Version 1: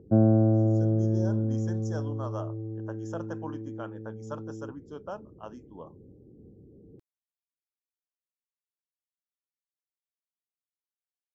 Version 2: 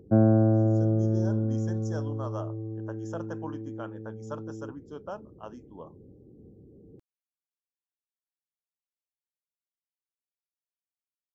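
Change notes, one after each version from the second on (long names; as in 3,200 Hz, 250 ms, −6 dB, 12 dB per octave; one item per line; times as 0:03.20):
background: remove Bessel low-pass filter 830 Hz, order 2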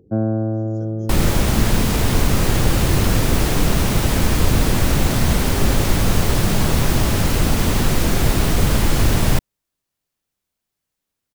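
second sound: unmuted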